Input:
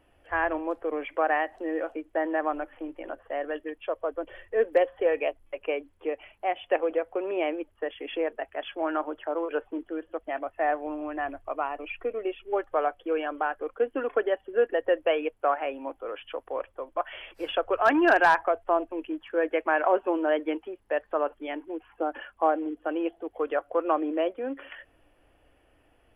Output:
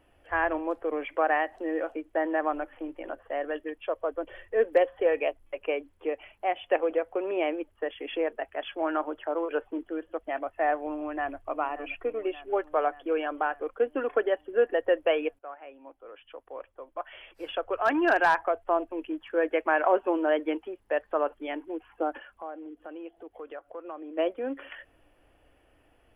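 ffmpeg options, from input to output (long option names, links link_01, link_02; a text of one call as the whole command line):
ffmpeg -i in.wav -filter_complex "[0:a]asplit=2[link_01][link_02];[link_02]afade=type=in:start_time=10.9:duration=0.01,afade=type=out:start_time=11.45:duration=0.01,aecho=0:1:580|1160|1740|2320|2900|3480|4060|4640:0.223872|0.145517|0.094586|0.0614809|0.0399626|0.0259757|0.0168842|0.0109747[link_03];[link_01][link_03]amix=inputs=2:normalize=0,asplit=3[link_04][link_05][link_06];[link_04]afade=type=out:start_time=22.17:duration=0.02[link_07];[link_05]acompressor=threshold=-48dB:ratio=2:attack=3.2:release=140:knee=1:detection=peak,afade=type=in:start_time=22.17:duration=0.02,afade=type=out:start_time=24.17:duration=0.02[link_08];[link_06]afade=type=in:start_time=24.17:duration=0.02[link_09];[link_07][link_08][link_09]amix=inputs=3:normalize=0,asplit=2[link_10][link_11];[link_10]atrim=end=15.39,asetpts=PTS-STARTPTS,afade=type=out:start_time=15.386:duration=0.004:curve=hsin:silence=0.11885[link_12];[link_11]atrim=start=15.39,asetpts=PTS-STARTPTS,afade=type=in:duration=3.99:silence=0.11885[link_13];[link_12][link_13]concat=n=2:v=0:a=1" out.wav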